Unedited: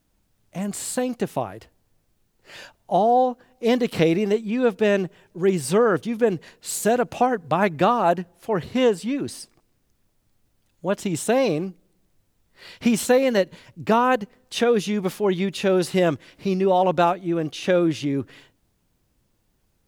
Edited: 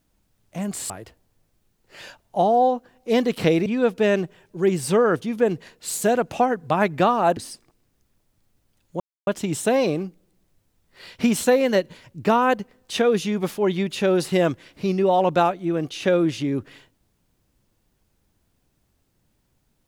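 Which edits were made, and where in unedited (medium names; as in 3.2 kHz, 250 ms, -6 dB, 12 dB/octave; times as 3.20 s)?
0.90–1.45 s: delete
4.21–4.47 s: delete
8.18–9.26 s: delete
10.89 s: insert silence 0.27 s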